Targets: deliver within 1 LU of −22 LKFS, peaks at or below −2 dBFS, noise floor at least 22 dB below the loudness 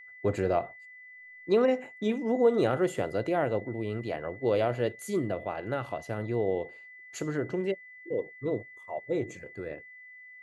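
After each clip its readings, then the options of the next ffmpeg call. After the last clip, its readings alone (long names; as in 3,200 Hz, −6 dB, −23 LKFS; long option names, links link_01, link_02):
interfering tone 2,000 Hz; level of the tone −47 dBFS; integrated loudness −30.5 LKFS; sample peak −13.0 dBFS; target loudness −22.0 LKFS
→ -af "bandreject=frequency=2000:width=30"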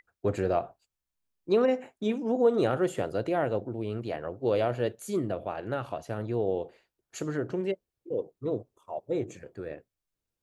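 interfering tone none found; integrated loudness −30.5 LKFS; sample peak −13.0 dBFS; target loudness −22.0 LKFS
→ -af "volume=8.5dB"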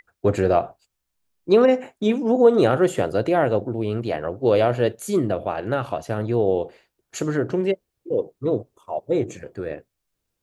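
integrated loudness −22.0 LKFS; sample peak −4.5 dBFS; background noise floor −80 dBFS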